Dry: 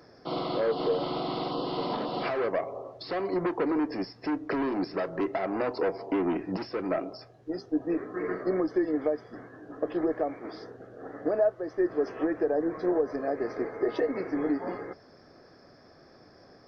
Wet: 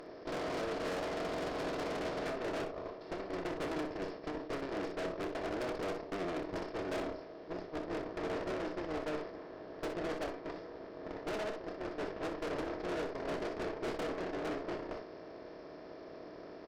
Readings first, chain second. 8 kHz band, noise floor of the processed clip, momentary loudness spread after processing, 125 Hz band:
can't be measured, −50 dBFS, 10 LU, −5.5 dB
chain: compressor on every frequency bin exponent 0.2
noise gate −14 dBFS, range −37 dB
in parallel at 0 dB: downward compressor, threshold −41 dBFS, peak gain reduction 16.5 dB
on the sum: tube saturation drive 43 dB, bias 0.75
on a send: ambience of single reflections 29 ms −11 dB, 62 ms −12 dB
on the sum: level that may fall only so fast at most 76 dB per second
level +7.5 dB

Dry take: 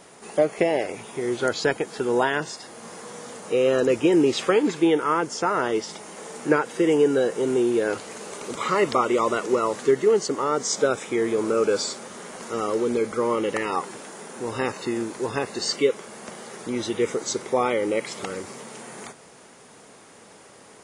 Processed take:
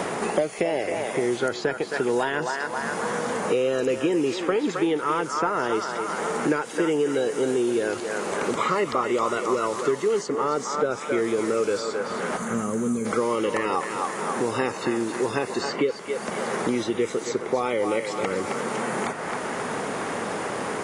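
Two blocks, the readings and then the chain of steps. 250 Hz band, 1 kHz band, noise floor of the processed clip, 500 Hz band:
−1.0 dB, +1.0 dB, −34 dBFS, −1.5 dB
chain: gain on a spectral selection 0:12.37–0:13.06, 240–5,900 Hz −16 dB
feedback echo with a band-pass in the loop 266 ms, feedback 46%, band-pass 1,300 Hz, level −6 dB
in parallel at −9 dB: soft clipping −16.5 dBFS, distortion −14 dB
on the sum: multiband upward and downward compressor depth 100%
level −4.5 dB

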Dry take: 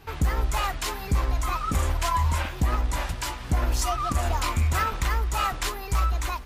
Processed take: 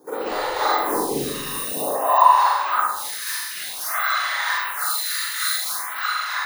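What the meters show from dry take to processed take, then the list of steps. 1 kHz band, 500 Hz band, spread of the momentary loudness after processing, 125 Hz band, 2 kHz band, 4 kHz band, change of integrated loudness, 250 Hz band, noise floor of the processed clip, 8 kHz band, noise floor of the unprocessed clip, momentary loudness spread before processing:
+9.0 dB, +8.5 dB, 10 LU, below −15 dB, +8.5 dB, +7.5 dB, +5.5 dB, +1.0 dB, −31 dBFS, +6.5 dB, −36 dBFS, 4 LU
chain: samples in bit-reversed order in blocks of 16 samples
high-shelf EQ 12,000 Hz −8 dB
high-pass filter sweep 380 Hz → 1,700 Hz, 0:01.18–0:03.23
random phases in short frames
healed spectral selection 0:01.30–0:02.23, 1,200–8,500 Hz after
flutter between parallel walls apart 7.2 metres, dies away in 0.41 s
four-comb reverb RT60 1.2 s, DRR −9 dB
phaser with staggered stages 0.52 Hz

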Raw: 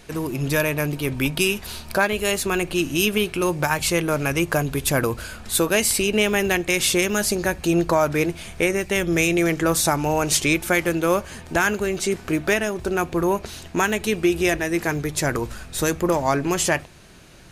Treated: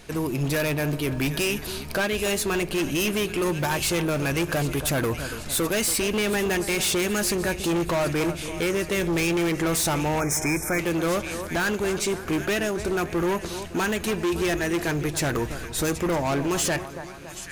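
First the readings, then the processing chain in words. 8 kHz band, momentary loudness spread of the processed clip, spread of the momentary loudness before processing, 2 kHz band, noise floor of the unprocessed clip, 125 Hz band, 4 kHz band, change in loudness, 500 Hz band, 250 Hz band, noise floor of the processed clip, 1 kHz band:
−3.0 dB, 5 LU, 6 LU, −4.5 dB, −42 dBFS, −1.5 dB, −3.0 dB, −3.5 dB, −3.5 dB, −2.5 dB, −37 dBFS, −4.5 dB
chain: echo with a time of its own for lows and highs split 1,600 Hz, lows 281 ms, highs 775 ms, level −15 dB
log-companded quantiser 8 bits
hard clipping −21 dBFS, distortion −8 dB
gain on a spectral selection 0:10.20–0:10.79, 2,500–5,100 Hz −23 dB

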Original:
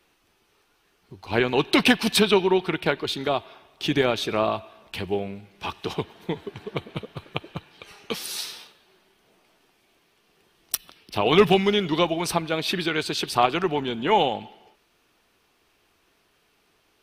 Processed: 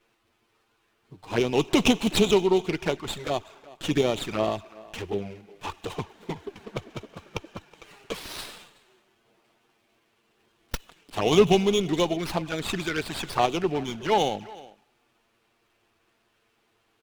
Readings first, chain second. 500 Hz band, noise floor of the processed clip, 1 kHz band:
−1.5 dB, −70 dBFS, −4.0 dB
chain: flanger swept by the level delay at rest 9 ms, full sweep at −19 dBFS
far-end echo of a speakerphone 370 ms, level −20 dB
windowed peak hold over 5 samples

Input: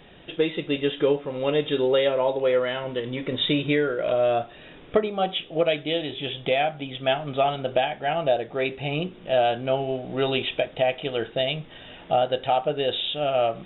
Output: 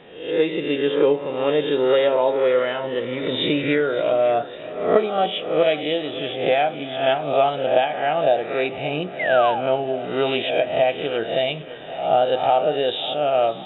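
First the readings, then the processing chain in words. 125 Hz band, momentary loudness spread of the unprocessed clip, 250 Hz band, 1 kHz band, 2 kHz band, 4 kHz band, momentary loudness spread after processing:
−1.5 dB, 7 LU, +2.5 dB, +5.0 dB, +4.0 dB, +1.0 dB, 7 LU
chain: peak hold with a rise ahead of every peak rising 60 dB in 0.61 s
high-pass filter 260 Hz 6 dB per octave
high-shelf EQ 2,700 Hz −9.5 dB
on a send: echo with a time of its own for lows and highs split 400 Hz, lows 303 ms, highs 557 ms, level −16 dB
on the sum: sound drawn into the spectrogram fall, 0:09.19–0:09.61, 730–2,200 Hz −29 dBFS
level +4 dB

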